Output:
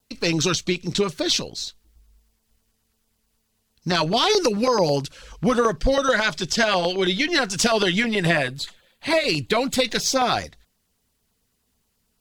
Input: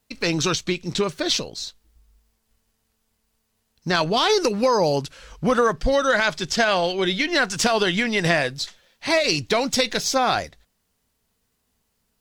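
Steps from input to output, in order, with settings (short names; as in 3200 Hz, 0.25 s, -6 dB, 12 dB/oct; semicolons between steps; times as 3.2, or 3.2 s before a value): 8.05–9.85 bell 5600 Hz -12.5 dB 0.41 oct; LFO notch saw down 9.2 Hz 410–2500 Hz; vibrato 0.45 Hz 6.7 cents; gain +1.5 dB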